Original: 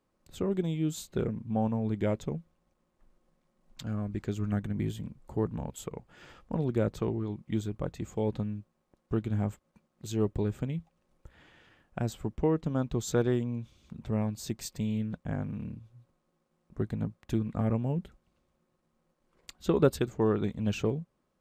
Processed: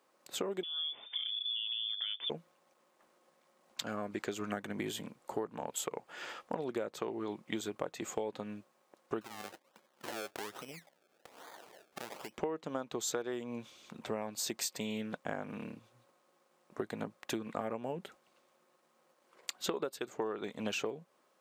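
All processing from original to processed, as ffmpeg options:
ffmpeg -i in.wav -filter_complex "[0:a]asettb=1/sr,asplit=3[link_01][link_02][link_03];[link_01]atrim=end=0.634[link_04];[link_02]atrim=start=0.63:end=2.3,asetpts=PTS-STARTPTS,afade=type=in:duration=0.004:curve=qsin,afade=type=out:start_time=1.666:duration=0.004:curve=qsin,acompressor=threshold=-41dB:ratio=12:attack=3.2:release=140:knee=1:detection=peak,lowpass=frequency=3100:width_type=q:width=0.5098,lowpass=frequency=3100:width_type=q:width=0.6013,lowpass=frequency=3100:width_type=q:width=0.9,lowpass=frequency=3100:width_type=q:width=2.563,afreqshift=-3600[link_05];[link_03]atrim=start=2.296[link_06];[link_04][link_05]acrossfade=duration=0.004:curve1=hsin:curve2=qsin[link_07];[link_07][link_06]acrossfade=duration=0.004:curve1=qsin:curve2=hsin,asettb=1/sr,asplit=3[link_08][link_09][link_10];[link_08]atrim=end=9.214[link_11];[link_09]atrim=start=9.21:end=12.38,asetpts=PTS-STARTPTS,afade=type=in:duration=0.004:curve=qsin,afade=type=out:start_time=3.166:duration=0.004:curve=qsin,lowshelf=frequency=190:gain=-5.5,acompressor=threshold=-41dB:ratio=16:attack=3.2:release=140:knee=1:detection=peak,acrusher=samples=31:mix=1:aa=0.000001:lfo=1:lforange=31:lforate=1.2[link_12];[link_10]atrim=start=12.376[link_13];[link_11][link_12]acrossfade=duration=0.004:curve1=hsin:curve2=qsin[link_14];[link_14][link_13]acrossfade=duration=0.004:curve1=qsin:curve2=hsin,highpass=490,acompressor=threshold=-42dB:ratio=16,volume=9.5dB" out.wav

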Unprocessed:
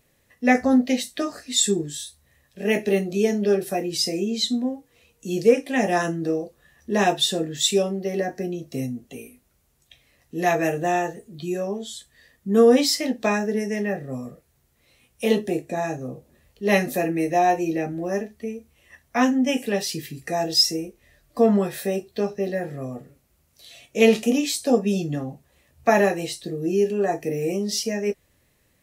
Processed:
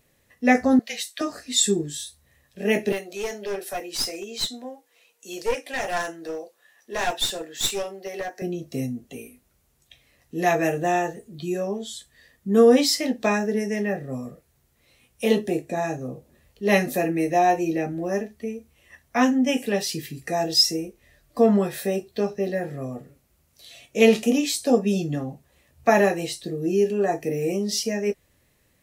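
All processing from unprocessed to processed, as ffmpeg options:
ffmpeg -i in.wav -filter_complex "[0:a]asettb=1/sr,asplit=3[link_01][link_02][link_03];[link_01]atrim=end=0.794[link_04];[link_02]atrim=start=0.79:end=1.21,asetpts=PTS-STARTPTS,afade=type=in:duration=0.004:curve=qsin,afade=type=out:start_time=0.416:duration=0.004:curve=qsin,highpass=1100,afreqshift=-25[link_05];[link_03]atrim=start=1.206[link_06];[link_04][link_05]acrossfade=duration=0.004:curve1=hsin:curve2=qsin[link_07];[link_07][link_06]acrossfade=duration=0.004:curve1=qsin:curve2=hsin,asettb=1/sr,asplit=3[link_08][link_09][link_10];[link_08]atrim=end=2.924[link_11];[link_09]atrim=start=2.92:end=8.42,asetpts=PTS-STARTPTS,afade=type=in:duration=0.004:curve=qsin,afade=type=out:start_time=5.496:duration=0.004:curve=qsin,highpass=600,aeval=exprs='clip(val(0),-1,0.0376)':channel_layout=same,bandreject=frequency=1200:width=19[link_12];[link_10]atrim=start=8.416[link_13];[link_11][link_12]acrossfade=duration=0.004:curve1=hsin:curve2=qsin[link_14];[link_14][link_13]acrossfade=duration=0.004:curve1=qsin:curve2=hsin" out.wav

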